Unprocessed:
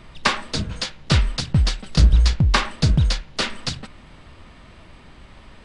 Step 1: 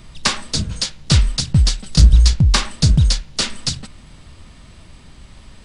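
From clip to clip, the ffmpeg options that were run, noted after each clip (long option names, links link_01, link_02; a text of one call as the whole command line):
ffmpeg -i in.wav -af "bass=frequency=250:gain=7,treble=frequency=4000:gain=14,volume=-2.5dB" out.wav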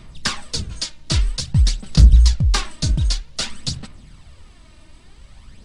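ffmpeg -i in.wav -af "aphaser=in_gain=1:out_gain=1:delay=3.3:decay=0.46:speed=0.52:type=sinusoidal,volume=-5.5dB" out.wav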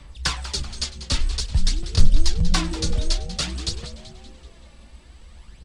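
ffmpeg -i in.wav -filter_complex "[0:a]asplit=7[link_01][link_02][link_03][link_04][link_05][link_06][link_07];[link_02]adelay=191,afreqshift=-150,volume=-13dB[link_08];[link_03]adelay=382,afreqshift=-300,volume=-18.4dB[link_09];[link_04]adelay=573,afreqshift=-450,volume=-23.7dB[link_10];[link_05]adelay=764,afreqshift=-600,volume=-29.1dB[link_11];[link_06]adelay=955,afreqshift=-750,volume=-34.4dB[link_12];[link_07]adelay=1146,afreqshift=-900,volume=-39.8dB[link_13];[link_01][link_08][link_09][link_10][link_11][link_12][link_13]amix=inputs=7:normalize=0,afreqshift=-71,volume=-2dB" out.wav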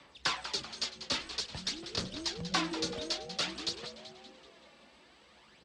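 ffmpeg -i in.wav -filter_complex "[0:a]acrossover=split=710|970[link_01][link_02][link_03];[link_03]asoftclip=type=tanh:threshold=-19dB[link_04];[link_01][link_02][link_04]amix=inputs=3:normalize=0,highpass=310,lowpass=5100,volume=-3dB" out.wav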